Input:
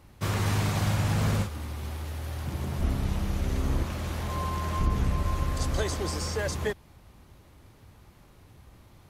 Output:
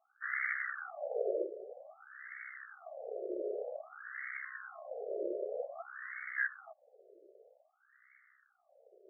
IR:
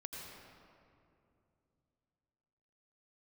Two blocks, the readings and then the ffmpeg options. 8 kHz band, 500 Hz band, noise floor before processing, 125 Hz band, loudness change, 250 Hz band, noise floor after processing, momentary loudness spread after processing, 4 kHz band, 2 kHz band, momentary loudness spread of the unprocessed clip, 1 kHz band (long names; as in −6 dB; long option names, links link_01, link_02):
below −40 dB, −3.0 dB, −56 dBFS, below −40 dB, −10.0 dB, −17.5 dB, −74 dBFS, 14 LU, below −40 dB, +0.5 dB, 9 LU, −13.5 dB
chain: -af "aeval=exprs='val(0)*sin(2*PI*32*n/s)':channel_layout=same,asuperstop=centerf=970:order=4:qfactor=0.81,afftfilt=real='re*between(b*sr/1024,480*pow(1600/480,0.5+0.5*sin(2*PI*0.52*pts/sr))/1.41,480*pow(1600/480,0.5+0.5*sin(2*PI*0.52*pts/sr))*1.41)':imag='im*between(b*sr/1024,480*pow(1600/480,0.5+0.5*sin(2*PI*0.52*pts/sr))/1.41,480*pow(1600/480,0.5+0.5*sin(2*PI*0.52*pts/sr))*1.41)':win_size=1024:overlap=0.75,volume=11.5dB"